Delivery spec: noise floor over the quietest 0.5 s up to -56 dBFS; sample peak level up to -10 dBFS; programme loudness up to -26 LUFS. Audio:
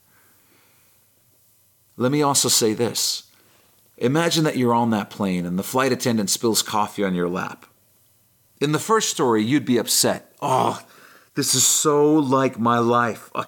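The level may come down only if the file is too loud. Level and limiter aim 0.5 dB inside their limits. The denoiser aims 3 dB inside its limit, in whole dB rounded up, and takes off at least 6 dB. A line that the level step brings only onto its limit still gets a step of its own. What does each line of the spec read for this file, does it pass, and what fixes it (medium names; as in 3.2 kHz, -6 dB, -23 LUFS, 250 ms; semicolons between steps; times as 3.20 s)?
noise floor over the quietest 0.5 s -60 dBFS: pass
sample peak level -4.0 dBFS: fail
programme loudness -20.0 LUFS: fail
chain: trim -6.5 dB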